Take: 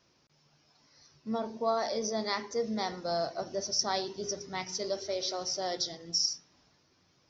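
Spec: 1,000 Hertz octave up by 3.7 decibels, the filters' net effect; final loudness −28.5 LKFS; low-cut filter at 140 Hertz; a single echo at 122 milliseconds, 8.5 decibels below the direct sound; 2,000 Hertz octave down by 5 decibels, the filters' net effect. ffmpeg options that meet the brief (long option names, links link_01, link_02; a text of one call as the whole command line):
ffmpeg -i in.wav -af "highpass=140,equalizer=frequency=1000:width_type=o:gain=7,equalizer=frequency=2000:width_type=o:gain=-8,aecho=1:1:122:0.376,volume=3dB" out.wav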